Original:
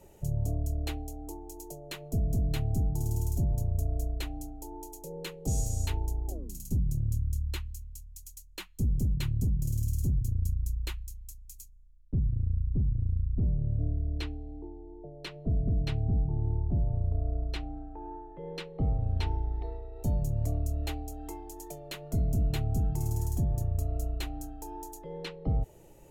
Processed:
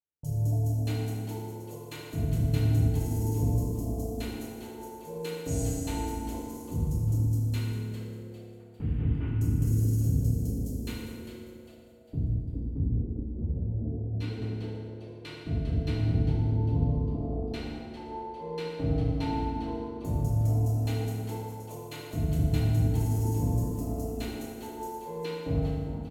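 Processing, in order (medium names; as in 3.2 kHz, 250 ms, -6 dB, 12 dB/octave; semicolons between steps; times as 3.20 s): 7.63–9.28 s: one-bit delta coder 16 kbps, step -48 dBFS; high-pass 68 Hz; gate -42 dBFS, range -48 dB; on a send: frequency-shifting echo 401 ms, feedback 38%, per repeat +140 Hz, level -11 dB; on the sum: FDN reverb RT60 2.1 s, low-frequency decay 1.25×, high-frequency decay 0.65×, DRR -6 dB; 13.23–14.42 s: three-phase chorus; trim -5.5 dB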